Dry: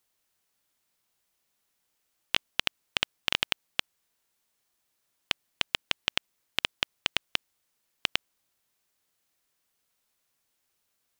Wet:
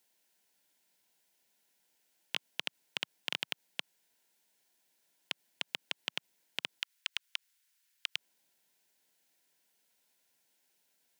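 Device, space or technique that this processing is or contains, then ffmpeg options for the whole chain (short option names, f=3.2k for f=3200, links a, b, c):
PA system with an anti-feedback notch: -filter_complex "[0:a]asplit=3[a][b][c];[a]afade=t=out:st=6.79:d=0.02[d];[b]highpass=f=1.2k:w=0.5412,highpass=f=1.2k:w=1.3066,afade=t=in:st=6.79:d=0.02,afade=t=out:st=8.15:d=0.02[e];[c]afade=t=in:st=8.15:d=0.02[f];[d][e][f]amix=inputs=3:normalize=0,highpass=f=150:w=0.5412,highpass=f=150:w=1.3066,asuperstop=centerf=1200:order=4:qfactor=4.1,alimiter=limit=-16dB:level=0:latency=1:release=82,volume=2dB"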